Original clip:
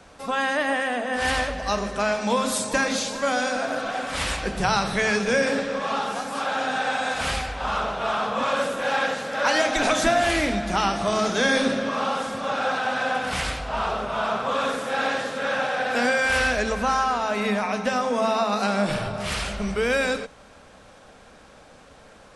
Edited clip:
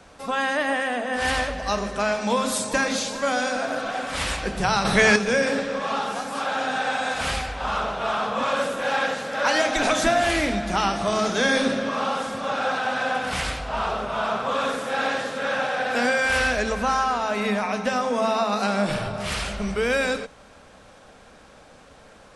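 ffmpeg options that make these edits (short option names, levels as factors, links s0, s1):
-filter_complex "[0:a]asplit=3[s0][s1][s2];[s0]atrim=end=4.852[s3];[s1]atrim=start=4.848:end=5.162,asetpts=PTS-STARTPTS,volume=2[s4];[s2]atrim=start=5.158[s5];[s3][s4]acrossfade=d=0.004:c1=hsin:c2=hsin[s6];[s6][s5]acrossfade=d=0.004:c1=hsin:c2=hsin"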